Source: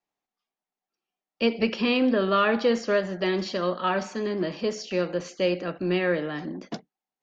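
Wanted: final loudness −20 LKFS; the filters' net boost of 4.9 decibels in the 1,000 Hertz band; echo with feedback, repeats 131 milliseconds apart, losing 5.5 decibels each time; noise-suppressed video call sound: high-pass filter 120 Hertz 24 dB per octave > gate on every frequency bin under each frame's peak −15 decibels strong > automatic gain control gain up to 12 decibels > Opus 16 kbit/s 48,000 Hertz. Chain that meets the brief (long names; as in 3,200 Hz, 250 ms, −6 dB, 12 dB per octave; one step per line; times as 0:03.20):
high-pass filter 120 Hz 24 dB per octave
parametric band 1,000 Hz +6.5 dB
repeating echo 131 ms, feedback 53%, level −5.5 dB
gate on every frequency bin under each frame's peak −15 dB strong
automatic gain control gain up to 12 dB
level +4 dB
Opus 16 kbit/s 48,000 Hz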